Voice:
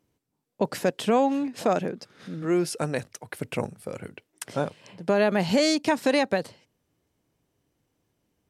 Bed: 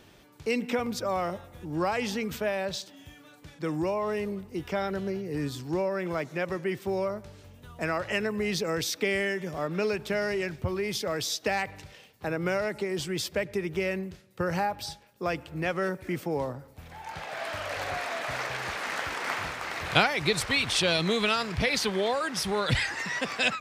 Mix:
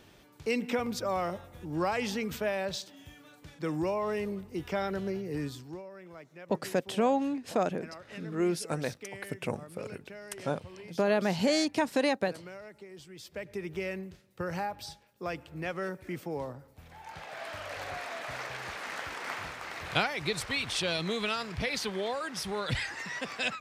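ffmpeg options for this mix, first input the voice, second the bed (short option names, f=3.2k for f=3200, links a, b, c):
-filter_complex "[0:a]adelay=5900,volume=-5dB[a];[1:a]volume=9.5dB,afade=t=out:st=5.32:d=0.5:silence=0.16788,afade=t=in:st=13.18:d=0.47:silence=0.266073[b];[a][b]amix=inputs=2:normalize=0"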